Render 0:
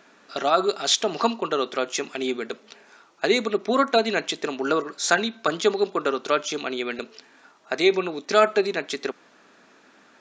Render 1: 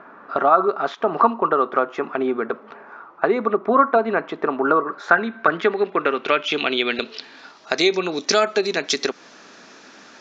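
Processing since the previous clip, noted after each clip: compressor 2:1, threshold -30 dBFS, peak gain reduction 10.5 dB; low-pass sweep 1200 Hz -> 5800 Hz, 4.87–7.89; gain +8.5 dB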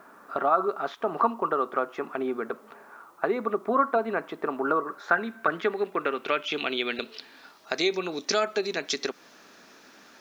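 added noise white -61 dBFS; gain -7.5 dB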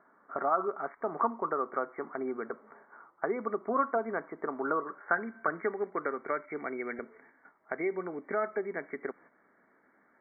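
gate -49 dBFS, range -7 dB; brick-wall FIR low-pass 2300 Hz; gain -5.5 dB

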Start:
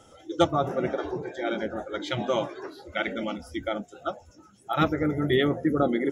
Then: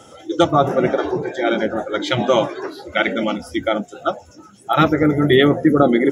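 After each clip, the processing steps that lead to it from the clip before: HPF 100 Hz; maximiser +11.5 dB; gain -1 dB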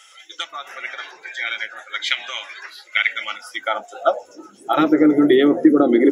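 compressor, threshold -15 dBFS, peak gain reduction 7 dB; high-pass sweep 2100 Hz -> 300 Hz, 3.14–4.57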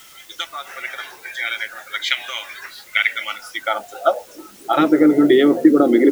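requantised 8-bit, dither triangular; gain +1 dB

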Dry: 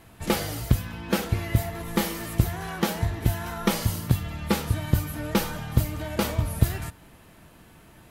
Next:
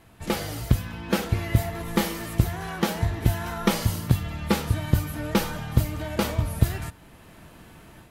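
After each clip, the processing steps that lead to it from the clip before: high shelf 9200 Hz -4 dB; AGC gain up to 6.5 dB; gain -2.5 dB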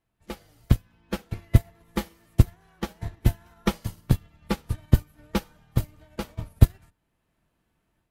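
octaver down 2 oct, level -5 dB; upward expander 2.5:1, over -32 dBFS; gain +4 dB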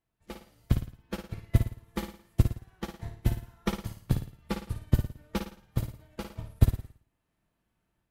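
flutter echo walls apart 9.5 m, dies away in 0.45 s; gain -6 dB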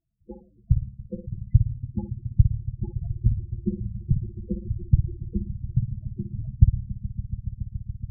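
swelling echo 0.141 s, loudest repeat 5, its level -17 dB; loudest bins only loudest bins 8; gain +5.5 dB

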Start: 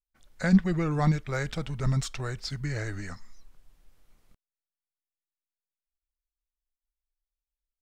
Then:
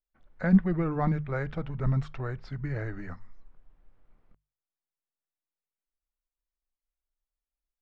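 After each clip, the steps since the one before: LPF 1600 Hz 12 dB/oct; notches 50/100/150 Hz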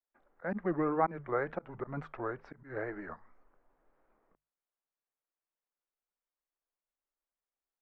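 wow and flutter 140 cents; auto swell 0.143 s; three-band isolator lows -21 dB, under 280 Hz, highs -21 dB, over 2000 Hz; gain +3 dB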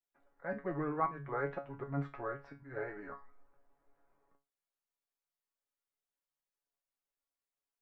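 resonator 140 Hz, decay 0.25 s, harmonics all, mix 90%; gain +6.5 dB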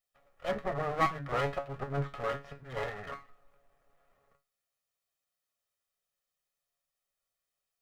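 minimum comb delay 1.6 ms; gain +7 dB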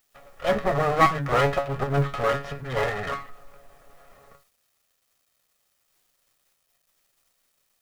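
G.711 law mismatch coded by mu; gain +9 dB

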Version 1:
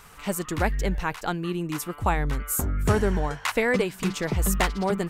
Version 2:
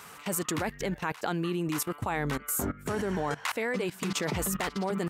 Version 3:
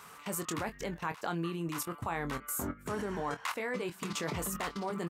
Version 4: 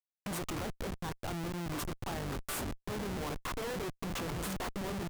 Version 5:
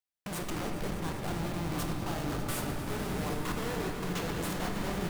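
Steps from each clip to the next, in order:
HPF 160 Hz 12 dB/oct; level quantiser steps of 18 dB; gain +6 dB
bell 1100 Hz +5 dB 0.45 oct; doubler 24 ms -9 dB; gain -6 dB
Schmitt trigger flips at -36.5 dBFS
on a send: swelling echo 0.1 s, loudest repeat 5, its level -14.5 dB; on the sum: shoebox room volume 160 m³, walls hard, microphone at 0.37 m

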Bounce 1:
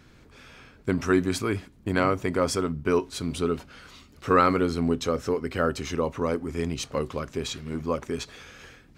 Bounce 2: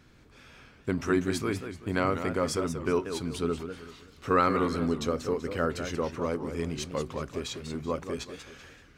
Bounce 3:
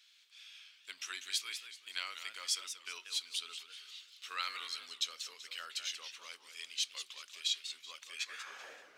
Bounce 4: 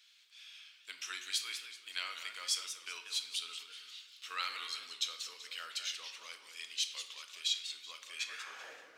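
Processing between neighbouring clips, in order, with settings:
warbling echo 0.19 s, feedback 35%, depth 210 cents, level -9 dB; gain -4 dB
high-pass sweep 3300 Hz -> 620 Hz, 8.08–8.68; gain -1 dB
reverb RT60 1.0 s, pre-delay 6 ms, DRR 7 dB

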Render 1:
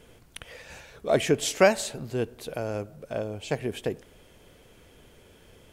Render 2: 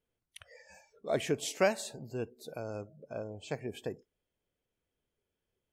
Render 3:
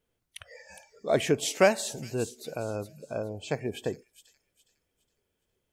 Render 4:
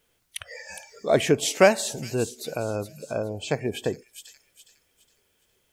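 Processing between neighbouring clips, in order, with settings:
spectral noise reduction 24 dB; gain -8.5 dB
thin delay 0.413 s, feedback 32%, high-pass 5400 Hz, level -6 dB; gain +6.5 dB
mismatched tape noise reduction encoder only; gain +4.5 dB

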